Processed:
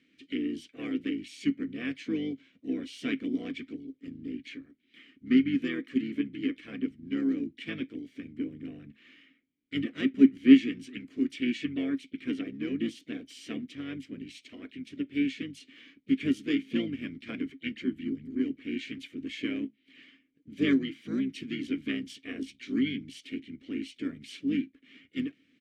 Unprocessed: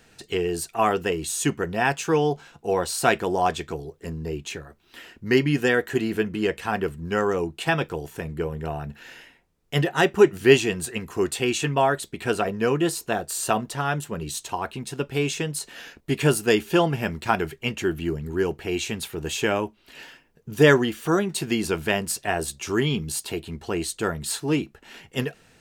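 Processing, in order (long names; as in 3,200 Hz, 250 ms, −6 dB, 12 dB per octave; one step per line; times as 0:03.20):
pitch-shifted copies added −7 semitones −2 dB, −3 semitones −15 dB, +5 semitones −17 dB
formant filter i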